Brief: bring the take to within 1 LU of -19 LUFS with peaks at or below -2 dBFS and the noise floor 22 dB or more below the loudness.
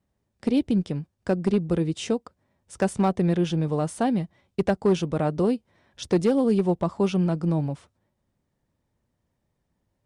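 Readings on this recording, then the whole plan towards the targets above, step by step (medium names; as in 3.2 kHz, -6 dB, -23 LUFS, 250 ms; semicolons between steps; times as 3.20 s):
clipped samples 0.5%; clipping level -14.0 dBFS; loudness -25.0 LUFS; peak level -14.0 dBFS; loudness target -19.0 LUFS
-> clip repair -14 dBFS; trim +6 dB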